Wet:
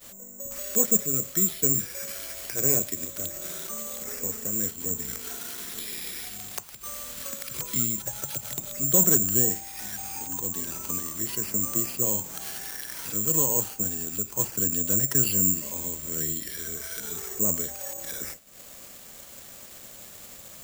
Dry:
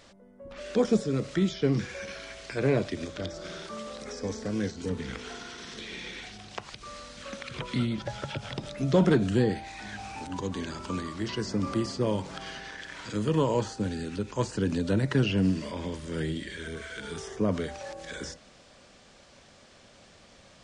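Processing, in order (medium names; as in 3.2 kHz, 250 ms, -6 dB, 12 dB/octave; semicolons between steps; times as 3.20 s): upward compressor, threshold -31 dBFS; careless resampling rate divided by 6×, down none, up zero stuff; expander -30 dBFS; trim -6 dB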